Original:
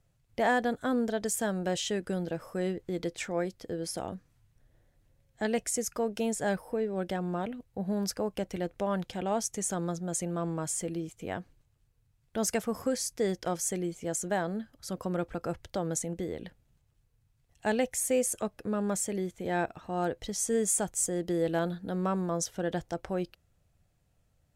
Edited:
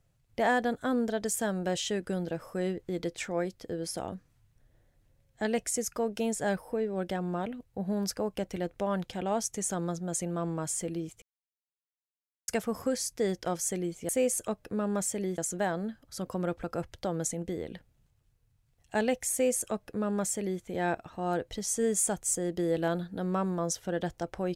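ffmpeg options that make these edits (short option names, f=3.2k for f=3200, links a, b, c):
-filter_complex "[0:a]asplit=5[a][b][c][d][e];[a]atrim=end=11.22,asetpts=PTS-STARTPTS,afade=t=out:st=11.216:d=0.004:c=hsin[f];[b]atrim=start=11.22:end=12.48,asetpts=PTS-STARTPTS,volume=0[g];[c]atrim=start=12.48:end=14.092,asetpts=PTS-STARTPTS,afade=t=in:d=0.004:c=hsin[h];[d]atrim=start=18.028:end=19.322[i];[e]atrim=start=14.088[j];[f][g][h]concat=n=3:v=0:a=1[k];[k][i]acrossfade=d=0.004:c1=hsin:c2=hsin[l];[l][j]acrossfade=d=0.004:c1=hsin:c2=hsin"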